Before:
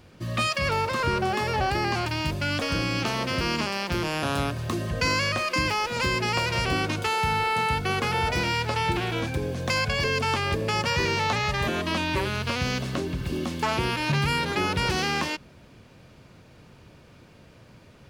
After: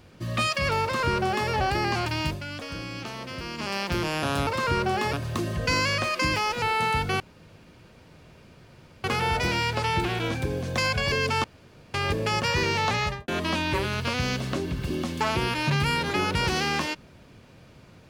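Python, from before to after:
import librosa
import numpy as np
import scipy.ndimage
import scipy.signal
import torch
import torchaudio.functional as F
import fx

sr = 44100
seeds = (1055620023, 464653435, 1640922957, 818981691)

y = fx.studio_fade_out(x, sr, start_s=11.45, length_s=0.25)
y = fx.edit(y, sr, fx.duplicate(start_s=0.83, length_s=0.66, to_s=4.47),
    fx.fade_down_up(start_s=2.27, length_s=1.46, db=-9.0, fade_s=0.16),
    fx.cut(start_s=5.96, length_s=1.42),
    fx.insert_room_tone(at_s=7.96, length_s=1.84),
    fx.insert_room_tone(at_s=10.36, length_s=0.5), tone=tone)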